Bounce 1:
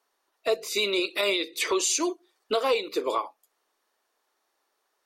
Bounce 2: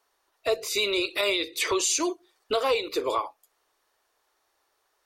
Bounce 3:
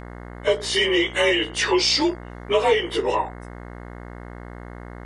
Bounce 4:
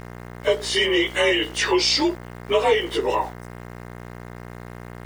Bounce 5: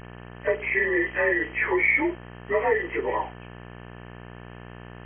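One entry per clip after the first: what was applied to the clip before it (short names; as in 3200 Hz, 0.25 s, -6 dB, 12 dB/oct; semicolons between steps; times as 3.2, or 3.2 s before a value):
resonant low shelf 140 Hz +8.5 dB, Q 3; in parallel at -3 dB: limiter -25.5 dBFS, peak gain reduction 11.5 dB; on the sum: gain -1.5 dB
inharmonic rescaling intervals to 91%; buzz 60 Hz, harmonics 36, -45 dBFS -4 dB/oct; gain +7.5 dB
sample gate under -40.5 dBFS
nonlinear frequency compression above 1700 Hz 4:1; gain -4.5 dB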